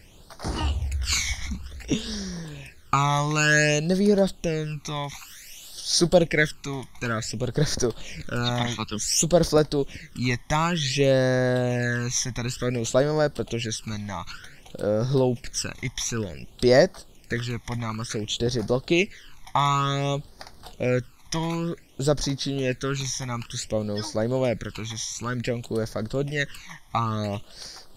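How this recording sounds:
phaser sweep stages 12, 0.55 Hz, lowest notch 460–2,700 Hz

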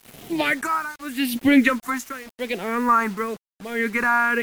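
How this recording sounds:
phaser sweep stages 4, 0.91 Hz, lowest notch 530–1,300 Hz
tremolo triangle 0.78 Hz, depth 95%
a quantiser's noise floor 8 bits, dither none
MP3

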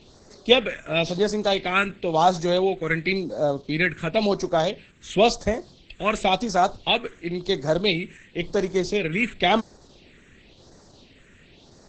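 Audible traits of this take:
phaser sweep stages 4, 0.95 Hz, lowest notch 780–2,800 Hz
Opus

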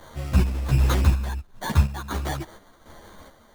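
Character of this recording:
aliases and images of a low sample rate 2,600 Hz, jitter 0%
chopped level 1.4 Hz, depth 60%, duty 60%
a shimmering, thickened sound

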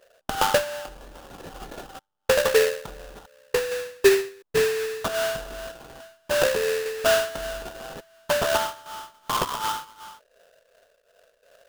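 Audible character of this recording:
phaser sweep stages 12, 2.7 Hz, lowest notch 800–1,600 Hz
sample-and-hold tremolo 3.5 Hz
aliases and images of a low sample rate 2,200 Hz, jitter 20%

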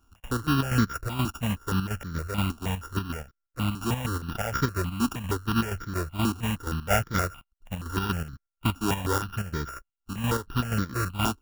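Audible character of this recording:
a buzz of ramps at a fixed pitch in blocks of 32 samples
chopped level 4.2 Hz, depth 60%, duty 55%
aliases and images of a low sample rate 4,200 Hz, jitter 0%
notches that jump at a steady rate 6.4 Hz 530–2,700 Hz

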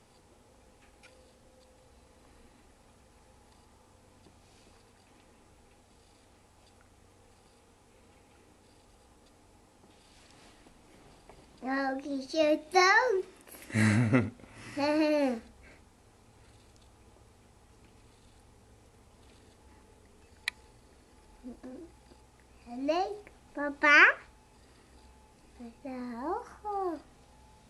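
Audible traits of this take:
background noise floor −62 dBFS
spectral slope −3.5 dB per octave

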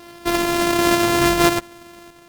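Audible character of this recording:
a buzz of ramps at a fixed pitch in blocks of 128 samples
sample-and-hold tremolo 3.8 Hz
Opus

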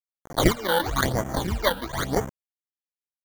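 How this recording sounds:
aliases and images of a low sample rate 2,600 Hz, jitter 0%
chopped level 8.8 Hz, depth 65%, duty 90%
a quantiser's noise floor 6 bits, dither none
phaser sweep stages 12, 1 Hz, lowest notch 110–4,100 Hz

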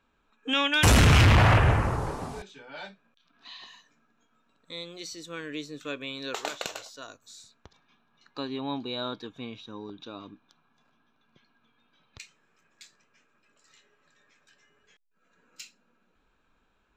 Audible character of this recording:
background noise floor −70 dBFS
spectral slope −4.5 dB per octave

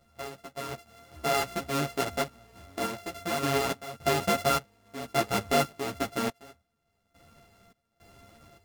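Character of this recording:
a buzz of ramps at a fixed pitch in blocks of 64 samples
sample-and-hold tremolo, depth 95%
a shimmering, thickened sound

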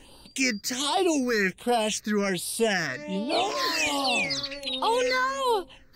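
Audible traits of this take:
phaser sweep stages 6, 1.3 Hz, lowest notch 740–1,900 Hz

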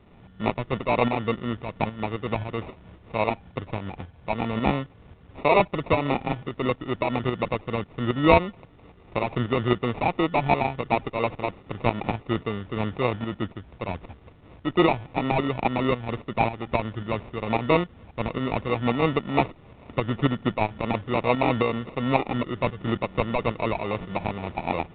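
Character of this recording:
aliases and images of a low sample rate 1,600 Hz, jitter 0%
tremolo saw up 3.7 Hz, depth 60%
A-law companding

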